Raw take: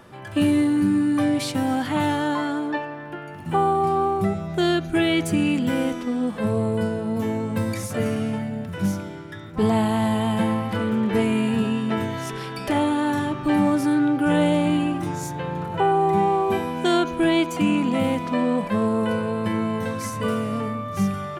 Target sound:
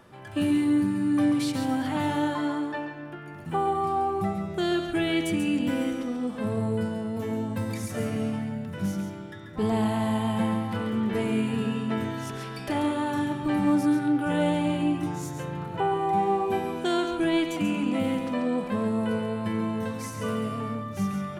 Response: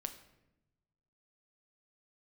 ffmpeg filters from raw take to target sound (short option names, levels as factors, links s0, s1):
-filter_complex "[0:a]asplit=2[s0][s1];[1:a]atrim=start_sample=2205,adelay=137[s2];[s1][s2]afir=irnorm=-1:irlink=0,volume=0.596[s3];[s0][s3]amix=inputs=2:normalize=0,volume=0.501"